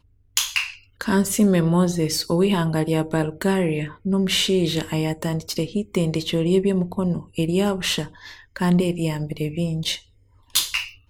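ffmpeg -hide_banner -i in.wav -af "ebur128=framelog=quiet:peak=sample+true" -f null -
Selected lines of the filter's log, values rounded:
Integrated loudness:
  I:         -22.2 LUFS
  Threshold: -32.4 LUFS
Loudness range:
  LRA:         3.2 LU
  Threshold: -42.3 LUFS
  LRA low:   -24.0 LUFS
  LRA high:  -20.9 LUFS
Sample peak:
  Peak:       -2.6 dBFS
True peak:
  Peak:       -2.3 dBFS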